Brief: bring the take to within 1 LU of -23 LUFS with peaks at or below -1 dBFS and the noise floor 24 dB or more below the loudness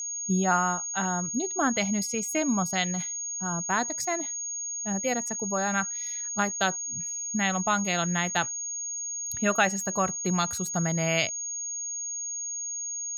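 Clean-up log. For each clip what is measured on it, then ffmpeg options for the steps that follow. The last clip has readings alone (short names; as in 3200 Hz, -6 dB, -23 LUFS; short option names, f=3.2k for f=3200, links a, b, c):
steady tone 6600 Hz; tone level -31 dBFS; loudness -27.5 LUFS; peak -10.0 dBFS; loudness target -23.0 LUFS
-> -af "bandreject=f=6.6k:w=30"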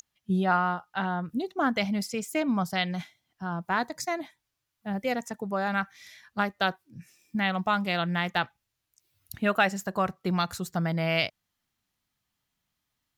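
steady tone none; loudness -29.0 LUFS; peak -10.5 dBFS; loudness target -23.0 LUFS
-> -af "volume=6dB"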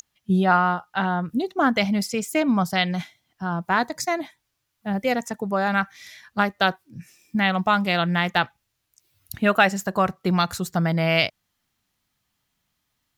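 loudness -23.0 LUFS; peak -4.5 dBFS; noise floor -76 dBFS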